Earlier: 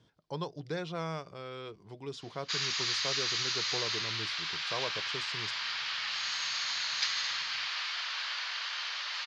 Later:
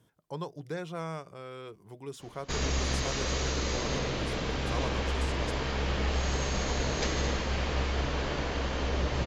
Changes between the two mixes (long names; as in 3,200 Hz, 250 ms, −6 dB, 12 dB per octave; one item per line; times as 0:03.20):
background: remove high-pass filter 1,200 Hz 24 dB per octave
master: remove low-pass with resonance 4,600 Hz, resonance Q 2.4